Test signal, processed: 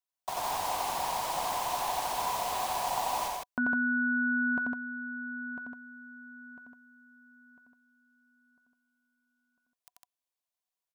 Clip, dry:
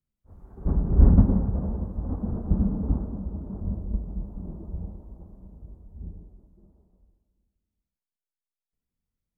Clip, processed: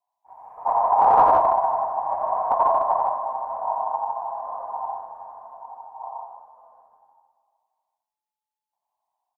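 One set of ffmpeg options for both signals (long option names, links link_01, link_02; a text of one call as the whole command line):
ffmpeg -i in.wav -filter_complex "[0:a]equalizer=frequency=125:width_type=o:width=1:gain=11,equalizer=frequency=250:width_type=o:width=1:gain=3,equalizer=frequency=500:width_type=o:width=1:gain=-7,equalizer=frequency=1000:width_type=o:width=1:gain=-6,volume=12.5dB,asoftclip=hard,volume=-12.5dB,aeval=exprs='val(0)*sin(2*PI*860*n/s)':channel_layout=same,lowshelf=frequency=210:gain=3.5,asplit=2[link_01][link_02];[link_02]aecho=0:1:87.46|154.5:0.708|0.708[link_03];[link_01][link_03]amix=inputs=2:normalize=0" out.wav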